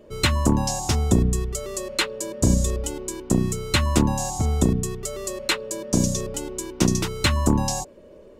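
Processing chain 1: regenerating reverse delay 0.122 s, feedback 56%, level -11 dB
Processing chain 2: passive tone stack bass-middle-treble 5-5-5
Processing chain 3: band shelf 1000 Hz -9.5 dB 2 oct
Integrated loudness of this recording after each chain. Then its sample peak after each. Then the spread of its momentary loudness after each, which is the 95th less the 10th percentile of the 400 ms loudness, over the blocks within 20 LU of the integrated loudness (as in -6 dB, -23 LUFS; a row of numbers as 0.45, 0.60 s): -23.0, -35.0, -24.0 LUFS; -4.0, -16.0, -6.0 dBFS; 9, 7, 10 LU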